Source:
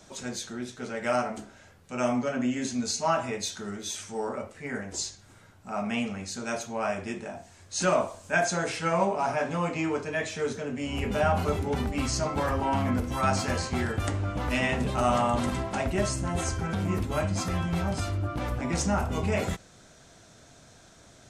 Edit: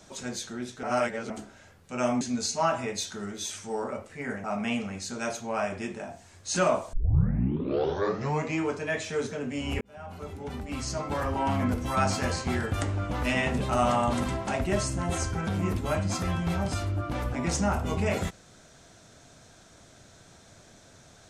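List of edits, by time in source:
0.83–1.30 s: reverse
2.21–2.66 s: delete
4.89–5.70 s: delete
8.19 s: tape start 1.63 s
11.07–12.84 s: fade in

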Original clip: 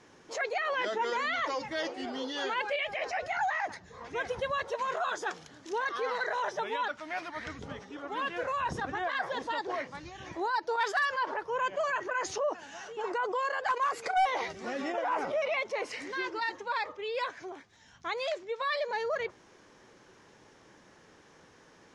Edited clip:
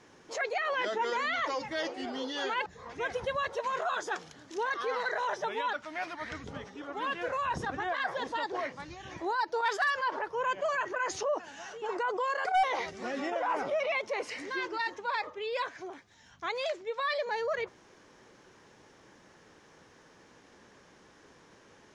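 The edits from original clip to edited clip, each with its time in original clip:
2.66–3.81 s: delete
13.60–14.07 s: delete

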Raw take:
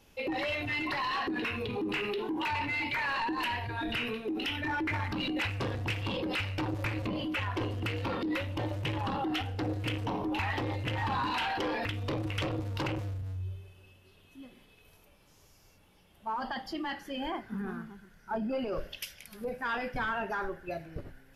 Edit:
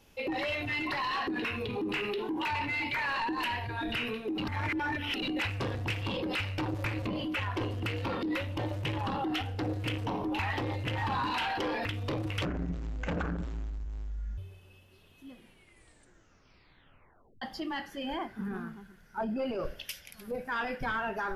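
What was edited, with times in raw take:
4.38–5.22 s: reverse
12.45–13.51 s: speed 55%
14.44 s: tape stop 2.11 s

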